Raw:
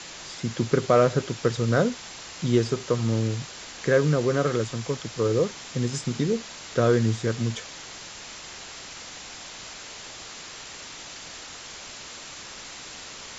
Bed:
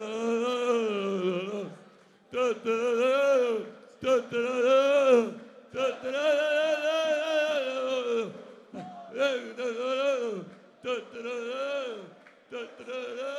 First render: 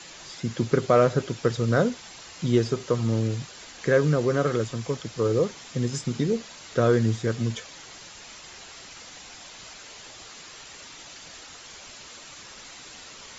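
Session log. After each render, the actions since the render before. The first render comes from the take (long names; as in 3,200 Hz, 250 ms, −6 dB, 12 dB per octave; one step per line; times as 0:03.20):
broadband denoise 6 dB, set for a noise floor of −41 dBFS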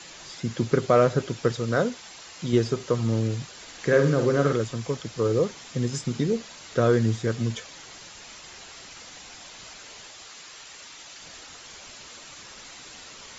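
0:01.52–0:02.53: low-shelf EQ 230 Hz −6.5 dB
0:03.63–0:04.53: flutter between parallel walls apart 8.6 metres, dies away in 0.43 s
0:10.06–0:11.20: low-shelf EQ 480 Hz −7 dB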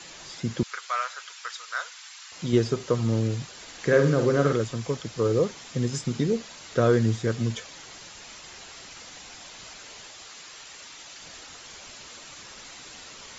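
0:00.63–0:02.32: high-pass filter 1,100 Hz 24 dB per octave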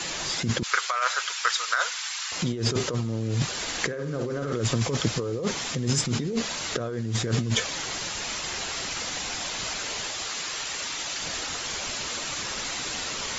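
in parallel at +2 dB: brickwall limiter −20 dBFS, peak gain reduction 11.5 dB
on the sum: compressor whose output falls as the input rises −26 dBFS, ratio −1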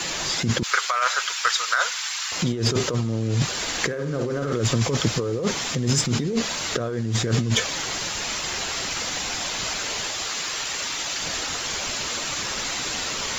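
leveller curve on the samples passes 1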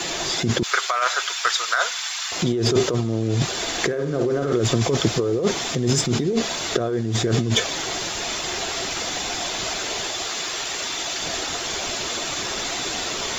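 hollow resonant body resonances 370/680/3,500 Hz, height 8 dB, ringing for 25 ms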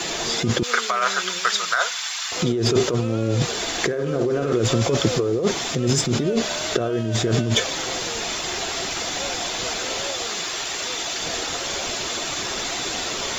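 mix in bed −8.5 dB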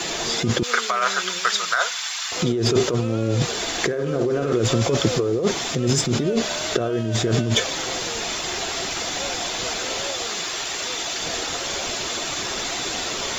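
no processing that can be heard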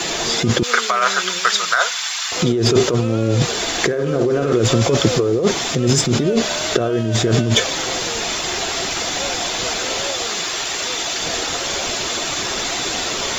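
level +4.5 dB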